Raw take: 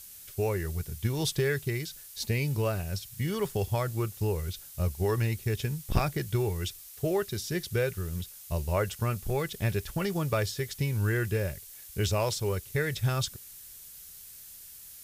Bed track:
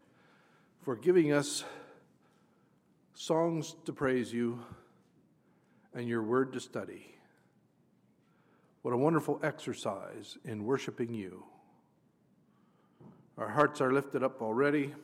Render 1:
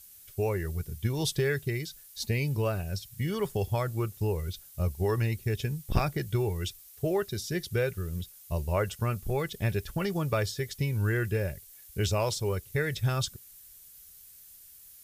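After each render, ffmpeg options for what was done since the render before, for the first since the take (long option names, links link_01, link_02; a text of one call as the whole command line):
ffmpeg -i in.wav -af "afftdn=noise_reduction=7:noise_floor=-48" out.wav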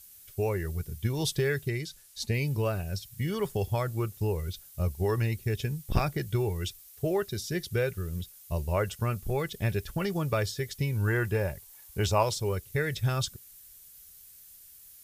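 ffmpeg -i in.wav -filter_complex "[0:a]asettb=1/sr,asplit=3[link_01][link_02][link_03];[link_01]atrim=end=1.694[link_04];[link_02]atrim=start=1.69:end=2.34,asetpts=PTS-STARTPTS,afade=type=in:duration=0.004:curve=qsin,afade=type=out:start_time=0.646:duration=0.004:curve=qsin,lowpass=11000[link_05];[link_03]atrim=start=2.336[link_06];[link_04][link_05]acrossfade=duration=0.004:curve1=hsin:curve2=qsin[link_07];[link_07][link_06]acrossfade=duration=0.004:curve1=qsin:curve2=hsin,asettb=1/sr,asplit=3[link_08][link_09][link_10];[link_08]atrim=end=11.074[link_11];[link_09]atrim=start=11.07:end=12.23,asetpts=PTS-STARTPTS,afade=type=in:duration=0.004:curve=qsin,afade=type=out:start_time=1.156:duration=0.004:curve=qsin,equalizer=frequency=910:width=1.8:gain=11[link_12];[link_10]atrim=start=12.226[link_13];[link_11][link_12]acrossfade=duration=0.004:curve1=hsin:curve2=qsin[link_14];[link_14][link_13]acrossfade=duration=0.004:curve1=qsin:curve2=hsin" out.wav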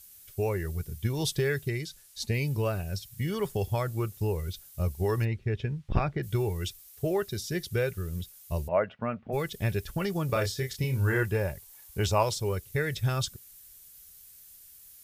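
ffmpeg -i in.wav -filter_complex "[0:a]asplit=3[link_01][link_02][link_03];[link_01]afade=type=out:start_time=5.24:duration=0.02[link_04];[link_02]lowpass=2600,afade=type=in:start_time=5.24:duration=0.02,afade=type=out:start_time=6.22:duration=0.02[link_05];[link_03]afade=type=in:start_time=6.22:duration=0.02[link_06];[link_04][link_05][link_06]amix=inputs=3:normalize=0,asplit=3[link_07][link_08][link_09];[link_07]afade=type=out:start_time=8.67:duration=0.02[link_10];[link_08]highpass=210,equalizer=frequency=240:width_type=q:width=4:gain=8,equalizer=frequency=370:width_type=q:width=4:gain=-8,equalizer=frequency=650:width_type=q:width=4:gain=8,lowpass=frequency=2400:width=0.5412,lowpass=frequency=2400:width=1.3066,afade=type=in:start_time=8.67:duration=0.02,afade=type=out:start_time=9.32:duration=0.02[link_11];[link_09]afade=type=in:start_time=9.32:duration=0.02[link_12];[link_10][link_11][link_12]amix=inputs=3:normalize=0,asettb=1/sr,asplit=3[link_13][link_14][link_15];[link_13]atrim=end=10.264[link_16];[link_14]atrim=start=10.26:end=11.23,asetpts=PTS-STARTPTS,afade=type=in:duration=0.004:curve=qsin,afade=type=out:start_time=0.966:duration=0.004:curve=qsin,asplit=2[link_17][link_18];[link_18]adelay=31,volume=-5dB[link_19];[link_17][link_19]amix=inputs=2:normalize=0,atrim=end_sample=42777[link_20];[link_15]atrim=start=11.226[link_21];[link_16][link_20]acrossfade=duration=0.004:curve1=hsin:curve2=qsin[link_22];[link_22][link_21]acrossfade=duration=0.004:curve1=qsin:curve2=hsin" out.wav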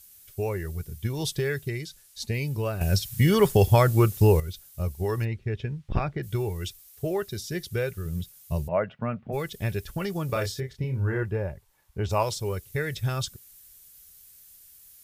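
ffmpeg -i in.wav -filter_complex "[0:a]asettb=1/sr,asplit=3[link_01][link_02][link_03];[link_01]atrim=end=8.054[link_04];[link_02]atrim=start=8.05:end=9.32,asetpts=PTS-STARTPTS,afade=type=in:duration=0.004:curve=qsin,afade=type=out:start_time=1.266:duration=0.004:curve=qsin,equalizer=frequency=140:width=1.5:gain=8[link_05];[link_03]atrim=start=9.316[link_06];[link_04][link_05]acrossfade=duration=0.004:curve1=hsin:curve2=qsin[link_07];[link_07][link_06]acrossfade=duration=0.004:curve1=qsin:curve2=hsin,asplit=3[link_08][link_09][link_10];[link_08]afade=type=out:start_time=10.59:duration=0.02[link_11];[link_09]lowpass=frequency=1100:poles=1,afade=type=in:start_time=10.59:duration=0.02,afade=type=out:start_time=12.09:duration=0.02[link_12];[link_10]afade=type=in:start_time=12.09:duration=0.02[link_13];[link_11][link_12][link_13]amix=inputs=3:normalize=0,asplit=3[link_14][link_15][link_16];[link_14]atrim=end=2.812[link_17];[link_15]atrim=start=2.808:end=4.402,asetpts=PTS-STARTPTS,volume=11dB[link_18];[link_16]atrim=start=4.398[link_19];[link_17][link_18]acrossfade=duration=0.004:curve1=hsin:curve2=hsin[link_20];[link_20][link_19]acrossfade=duration=0.004:curve1=hsin:curve2=hsin" out.wav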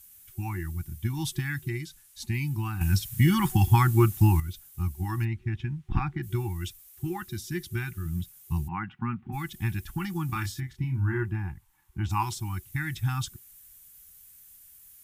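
ffmpeg -i in.wav -af "equalizer=frequency=4700:width_type=o:width=0.91:gain=-6.5,afftfilt=real='re*(1-between(b*sr/4096,370,750))':imag='im*(1-between(b*sr/4096,370,750))':win_size=4096:overlap=0.75" out.wav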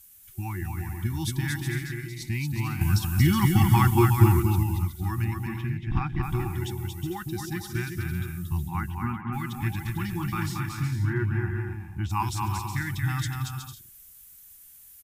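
ffmpeg -i in.wav -af "aecho=1:1:230|368|450.8|500.5|530.3:0.631|0.398|0.251|0.158|0.1" out.wav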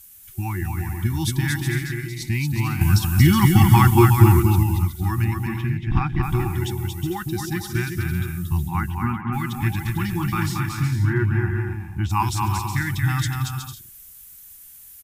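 ffmpeg -i in.wav -af "volume=6dB,alimiter=limit=-2dB:level=0:latency=1" out.wav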